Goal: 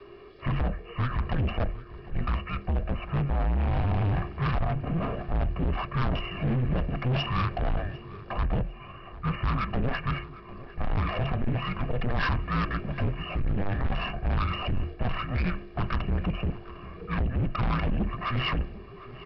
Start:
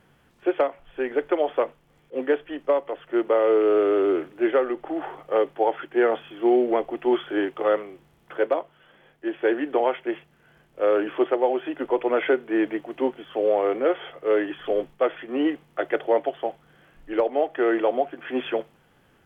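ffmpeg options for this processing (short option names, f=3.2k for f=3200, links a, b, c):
-filter_complex "[0:a]highpass=40,equalizer=f=99:w=2.2:g=12.5,bandreject=f=60:t=h:w=6,bandreject=f=120:t=h:w=6,bandreject=f=180:t=h:w=6,bandreject=f=240:t=h:w=6,bandreject=f=300:t=h:w=6,bandreject=f=360:t=h:w=6,bandreject=f=420:t=h:w=6,bandreject=f=480:t=h:w=6,bandreject=f=540:t=h:w=6,aecho=1:1:1.8:0.91,adynamicequalizer=threshold=0.0224:dfrequency=360:dqfactor=1.9:tfrequency=360:tqfactor=1.9:attack=5:release=100:ratio=0.375:range=3:mode=cutabove:tftype=bell,alimiter=limit=-16.5dB:level=0:latency=1:release=11,afreqshift=-500,aresample=11025,asoftclip=type=tanh:threshold=-30dB,aresample=44100,asplit=2[a][b];[b]adelay=752,lowpass=f=2.5k:p=1,volume=-17dB,asplit=2[c][d];[d]adelay=752,lowpass=f=2.5k:p=1,volume=0.49,asplit=2[e][f];[f]adelay=752,lowpass=f=2.5k:p=1,volume=0.49,asplit=2[g][h];[h]adelay=752,lowpass=f=2.5k:p=1,volume=0.49[i];[a][c][e][g][i]amix=inputs=5:normalize=0,volume=7dB"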